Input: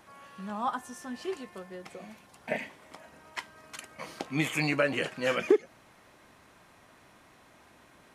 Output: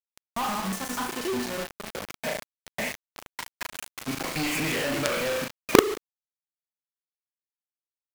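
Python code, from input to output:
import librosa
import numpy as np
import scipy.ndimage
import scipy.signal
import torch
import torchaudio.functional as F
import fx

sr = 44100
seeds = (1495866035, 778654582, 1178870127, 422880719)

y = fx.block_reorder(x, sr, ms=121.0, group=3)
y = fx.room_flutter(y, sr, wall_m=6.3, rt60_s=0.43)
y = fx.quant_companded(y, sr, bits=2)
y = F.gain(torch.from_numpy(y), -1.5).numpy()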